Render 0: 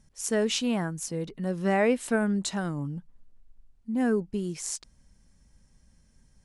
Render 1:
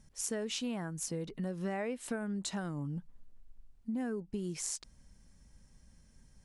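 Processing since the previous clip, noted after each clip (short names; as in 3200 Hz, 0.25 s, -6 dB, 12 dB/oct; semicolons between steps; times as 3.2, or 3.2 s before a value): compressor 6:1, threshold -34 dBFS, peak gain reduction 14.5 dB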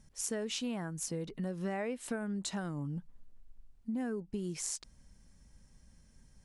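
nothing audible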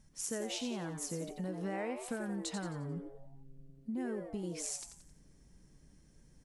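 frequency-shifting echo 88 ms, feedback 43%, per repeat +130 Hz, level -7.5 dB; gain -2.5 dB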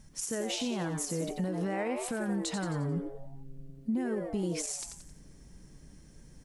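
limiter -32.5 dBFS, peak gain reduction 10.5 dB; gain +8.5 dB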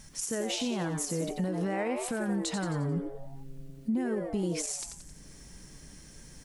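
mismatched tape noise reduction encoder only; gain +1.5 dB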